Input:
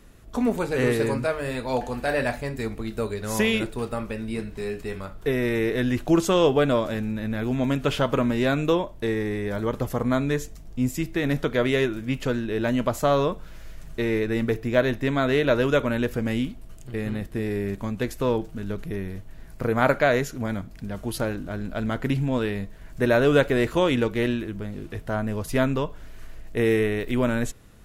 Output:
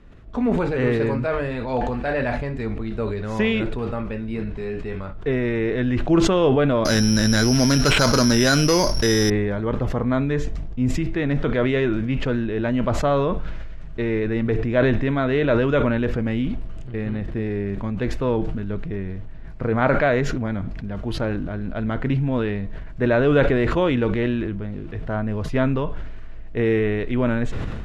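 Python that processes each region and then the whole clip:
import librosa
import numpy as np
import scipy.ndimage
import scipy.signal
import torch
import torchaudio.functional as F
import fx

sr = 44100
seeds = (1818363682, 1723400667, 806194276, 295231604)

y = fx.chain(x, sr, fx.peak_eq(hz=1500.0, db=8.5, octaves=0.37),
    fx.resample_bad(factor=8, down='none', up='zero_stuff'),
    fx.env_flatten(amount_pct=70), at=(6.85, 9.3))
y = scipy.signal.sosfilt(scipy.signal.butter(2, 3000.0, 'lowpass', fs=sr, output='sos'), y)
y = fx.low_shelf(y, sr, hz=200.0, db=4.0)
y = fx.sustainer(y, sr, db_per_s=25.0)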